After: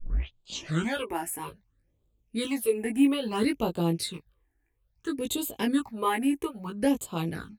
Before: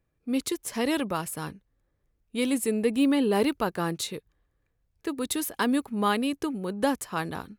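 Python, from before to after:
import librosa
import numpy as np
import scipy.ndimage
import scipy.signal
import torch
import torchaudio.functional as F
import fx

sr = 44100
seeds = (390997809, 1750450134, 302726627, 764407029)

y = fx.tape_start_head(x, sr, length_s=1.07)
y = fx.phaser_stages(y, sr, stages=8, low_hz=150.0, high_hz=1800.0, hz=0.6, feedback_pct=25)
y = fx.doubler(y, sr, ms=18.0, db=-3)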